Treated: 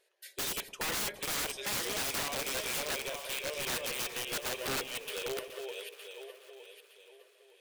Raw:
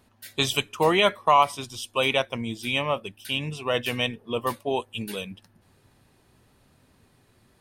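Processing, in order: backward echo that repeats 457 ms, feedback 54%, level -4 dB; brick-wall FIR band-pass 360–14000 Hz; high-order bell 990 Hz -11.5 dB 1.1 oct; integer overflow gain 23 dB; on a send: two-band feedback delay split 860 Hz, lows 108 ms, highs 423 ms, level -13 dB; on the sum: trim -6 dB

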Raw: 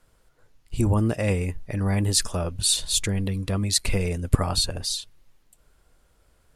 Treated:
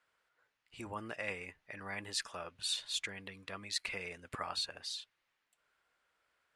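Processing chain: band-pass filter 1.9 kHz, Q 1.1; trim -5 dB

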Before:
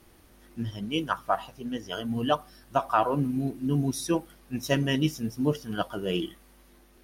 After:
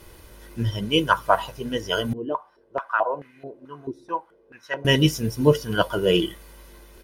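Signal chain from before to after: comb 2 ms, depth 52%; 2.13–4.85 s: step-sequenced band-pass 4.6 Hz 340–2000 Hz; trim +8.5 dB

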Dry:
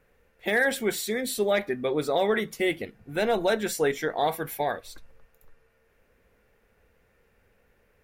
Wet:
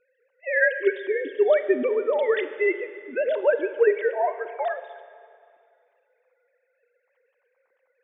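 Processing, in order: formants replaced by sine waves; Schroeder reverb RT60 2.3 s, combs from 33 ms, DRR 11 dB; trim +3 dB

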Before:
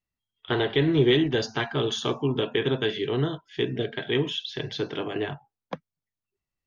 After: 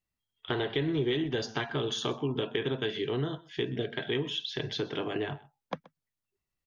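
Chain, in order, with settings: compression 2.5:1, threshold -30 dBFS, peak gain reduction 10 dB; delay 127 ms -21.5 dB

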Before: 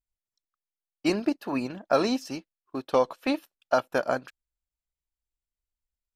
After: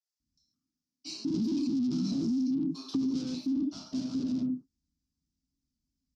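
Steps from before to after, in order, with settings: compression, threshold -26 dBFS, peak gain reduction 9.5 dB; tilt shelf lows +6 dB; bands offset in time highs, lows 200 ms, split 840 Hz; gated-style reverb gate 180 ms falling, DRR -7.5 dB; saturation -32 dBFS, distortion -3 dB; FFT filter 110 Hz 0 dB, 270 Hz +14 dB, 510 Hz -22 dB, 1.2 kHz -17 dB, 1.8 kHz -27 dB, 5.3 kHz +10 dB, 11 kHz -15 dB; peak limiter -24.5 dBFS, peak gain reduction 9 dB; high-pass 67 Hz; 1.34–3.35 s: three bands compressed up and down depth 100%

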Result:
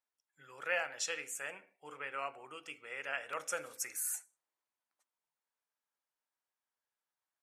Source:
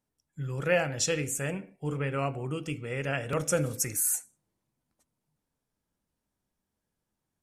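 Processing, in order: high-pass 1.1 kHz 12 dB/octave; treble shelf 2.7 kHz -10.5 dB

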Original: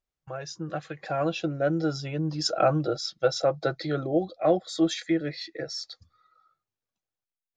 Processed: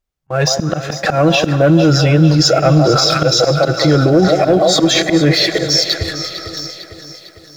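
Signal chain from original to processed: bass shelf 170 Hz +6.5 dB; on a send: repeats whose band climbs or falls 166 ms, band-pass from 750 Hz, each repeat 0.7 oct, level -7.5 dB; on the sum: dynamic bell 850 Hz, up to -4 dB, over -37 dBFS, Q 1.5; waveshaping leveller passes 1; slow attack 422 ms; reverse; compression, threshold -32 dBFS, peak gain reduction 14.5 dB; reverse; Schroeder reverb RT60 3.8 s, combs from 33 ms, DRR 19 dB; gate -59 dBFS, range -21 dB; loudness maximiser +31.5 dB; bit-crushed delay 452 ms, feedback 55%, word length 7-bit, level -12 dB; trim -3 dB

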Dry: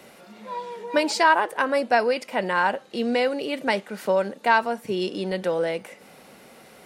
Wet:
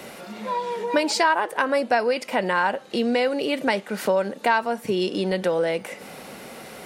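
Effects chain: compression 2:1, threshold -34 dBFS, peak gain reduction 12 dB; trim +9 dB

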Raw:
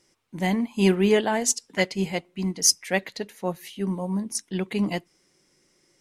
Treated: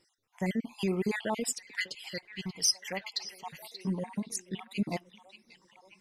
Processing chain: random holes in the spectrogram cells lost 48%; peak limiter -17 dBFS, peak gain reduction 9 dB; 2.07–3.59 s: ten-band graphic EQ 250 Hz -10 dB, 500 Hz -5 dB, 4 kHz +10 dB; on a send: repeats whose band climbs or falls 582 ms, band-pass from 3.3 kHz, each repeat -0.7 oct, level -10 dB; on the sum: trim -3.5 dB

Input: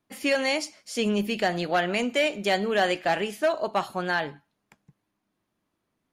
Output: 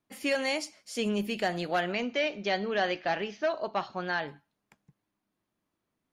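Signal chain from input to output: 1.92–4.28 s: Chebyshev low-pass 6.2 kHz, order 6; trim -4.5 dB

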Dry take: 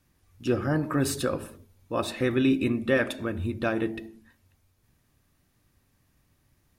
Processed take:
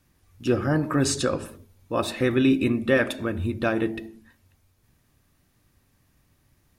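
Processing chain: 1.04–1.45 s: resonant low-pass 6.9 kHz, resonance Q 2; trim +3 dB

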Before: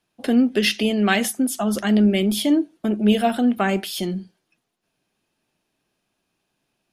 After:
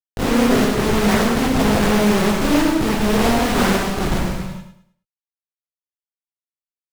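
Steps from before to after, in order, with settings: reverse spectral sustain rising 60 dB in 0.43 s; reverb removal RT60 0.72 s; rippled Chebyshev low-pass 1.7 kHz, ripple 6 dB; dynamic bell 210 Hz, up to +3 dB, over -34 dBFS, Q 4.9; in parallel at +3 dB: compression 20:1, threshold -25 dBFS, peak gain reduction 13 dB; 3.57–4.18 s: on the sum: comb 4 ms, depth 46%; Schmitt trigger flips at -21 dBFS; feedback delay 106 ms, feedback 30%, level -8 dB; gated-style reverb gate 460 ms falling, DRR -4.5 dB; loudspeaker Doppler distortion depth 0.65 ms

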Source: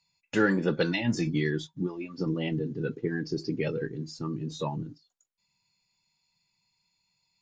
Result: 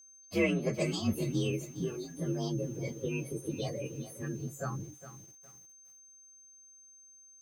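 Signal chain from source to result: frequency axis rescaled in octaves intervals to 123%; whistle 6.3 kHz -52 dBFS; bit-crushed delay 410 ms, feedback 35%, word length 8-bit, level -13 dB; trim -2.5 dB

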